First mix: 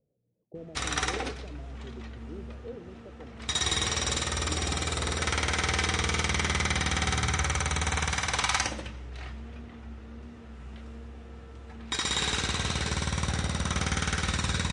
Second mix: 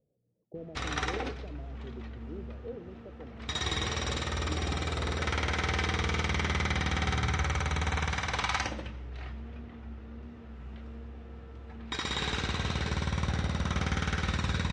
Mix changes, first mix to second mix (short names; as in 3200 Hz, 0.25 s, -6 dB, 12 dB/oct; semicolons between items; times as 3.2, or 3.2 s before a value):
background: add tape spacing loss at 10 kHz 31 dB; master: add high shelf 3200 Hz +11 dB